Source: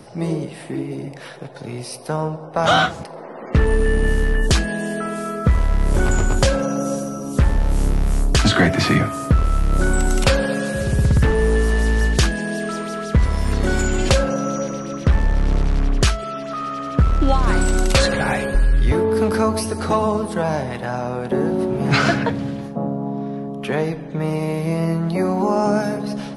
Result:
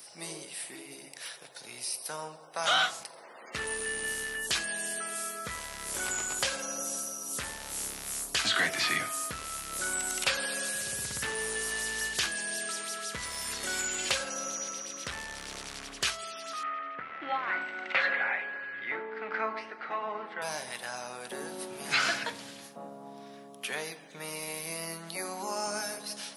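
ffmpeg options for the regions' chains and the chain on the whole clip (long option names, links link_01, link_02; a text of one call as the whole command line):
ffmpeg -i in.wav -filter_complex "[0:a]asettb=1/sr,asplit=3[link_01][link_02][link_03];[link_01]atrim=end=16.634[link_04];[link_02]atrim=start=16.63:end=20.42,asetpts=PTS-STARTPTS,afade=type=in:duration=0.004:curve=qsin,afade=type=out:start_time=3.786:duration=0.004:curve=qsin,tremolo=f=1.4:d=0.4,highpass=200,equalizer=frequency=750:width_type=q:width=4:gain=4,equalizer=frequency=1400:width_type=q:width=4:gain=4,equalizer=frequency=2000:width_type=q:width=4:gain=9,lowpass=frequency=2500:width=0.5412,lowpass=frequency=2500:width=1.3066,asplit=2[link_05][link_06];[link_06]adelay=36,volume=-14dB[link_07];[link_05][link_07]amix=inputs=2:normalize=0,atrim=end_sample=167139[link_08];[link_03]atrim=start=20.416[link_09];[link_04][link_08]acrossfade=duration=0.004:curve1=hsin:curve2=qsin[link_10];[link_10][link_09]acrossfade=duration=0.004:curve1=qsin:curve2=hsin,acrossover=split=3400[link_11][link_12];[link_12]acompressor=threshold=-36dB:ratio=4:attack=1:release=60[link_13];[link_11][link_13]amix=inputs=2:normalize=0,aderivative,bandreject=frequency=45.62:width_type=h:width=4,bandreject=frequency=91.24:width_type=h:width=4,bandreject=frequency=136.86:width_type=h:width=4,bandreject=frequency=182.48:width_type=h:width=4,bandreject=frequency=228.1:width_type=h:width=4,bandreject=frequency=273.72:width_type=h:width=4,bandreject=frequency=319.34:width_type=h:width=4,bandreject=frequency=364.96:width_type=h:width=4,bandreject=frequency=410.58:width_type=h:width=4,bandreject=frequency=456.2:width_type=h:width=4,bandreject=frequency=501.82:width_type=h:width=4,bandreject=frequency=547.44:width_type=h:width=4,bandreject=frequency=593.06:width_type=h:width=4,bandreject=frequency=638.68:width_type=h:width=4,bandreject=frequency=684.3:width_type=h:width=4,bandreject=frequency=729.92:width_type=h:width=4,bandreject=frequency=775.54:width_type=h:width=4,bandreject=frequency=821.16:width_type=h:width=4,bandreject=frequency=866.78:width_type=h:width=4,bandreject=frequency=912.4:width_type=h:width=4,bandreject=frequency=958.02:width_type=h:width=4,bandreject=frequency=1003.64:width_type=h:width=4,bandreject=frequency=1049.26:width_type=h:width=4,bandreject=frequency=1094.88:width_type=h:width=4,bandreject=frequency=1140.5:width_type=h:width=4,bandreject=frequency=1186.12:width_type=h:width=4,bandreject=frequency=1231.74:width_type=h:width=4,bandreject=frequency=1277.36:width_type=h:width=4,bandreject=frequency=1322.98:width_type=h:width=4,bandreject=frequency=1368.6:width_type=h:width=4,volume=5dB" out.wav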